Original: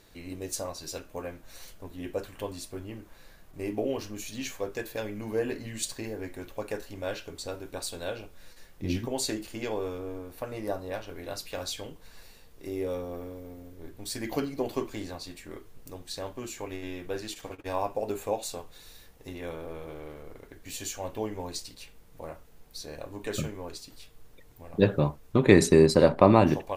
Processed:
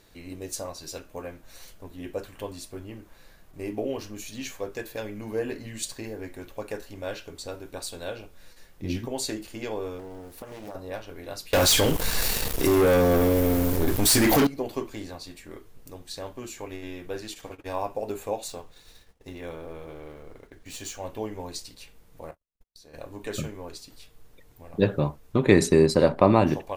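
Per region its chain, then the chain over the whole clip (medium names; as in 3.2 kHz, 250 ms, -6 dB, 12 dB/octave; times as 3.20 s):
9.99–10.75 s: tone controls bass -1 dB, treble +6 dB + compression 4:1, threshold -36 dBFS + loudspeaker Doppler distortion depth 0.75 ms
11.53–14.47 s: treble shelf 7.1 kHz +8.5 dB + waveshaping leveller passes 5 + level flattener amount 50%
18.48–21.06 s: median filter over 3 samples + expander -49 dBFS
22.31–22.94 s: gate -44 dBFS, range -45 dB + compression 12:1, threshold -47 dBFS
whole clip: none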